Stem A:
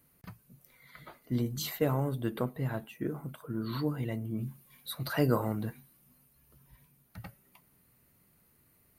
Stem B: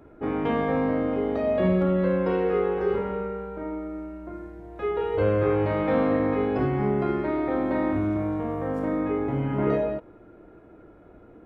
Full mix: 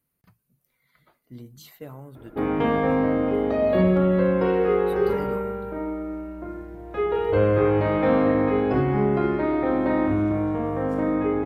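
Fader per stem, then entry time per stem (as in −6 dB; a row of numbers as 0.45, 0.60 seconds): −11.0, +3.0 decibels; 0.00, 2.15 seconds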